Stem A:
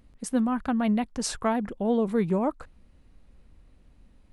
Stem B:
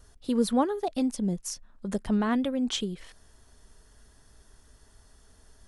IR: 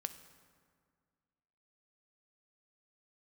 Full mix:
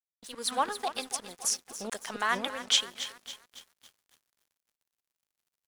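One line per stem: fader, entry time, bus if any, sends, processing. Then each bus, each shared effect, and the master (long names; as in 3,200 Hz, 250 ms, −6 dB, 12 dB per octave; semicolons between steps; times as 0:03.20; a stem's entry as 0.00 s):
−6.0 dB, 0.00 s, no send, echo send −24 dB, meter weighting curve D; gate with flip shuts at −17 dBFS, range −33 dB; automatic ducking −10 dB, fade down 0.30 s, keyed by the second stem
+1.0 dB, 0.00 s, send −9.5 dB, echo send −10 dB, high-pass filter 1,300 Hz 12 dB per octave; high-shelf EQ 2,300 Hz −2.5 dB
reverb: on, RT60 1.9 s, pre-delay 3 ms
echo: repeating echo 278 ms, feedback 57%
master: automatic gain control gain up to 7 dB; dead-zone distortion −48 dBFS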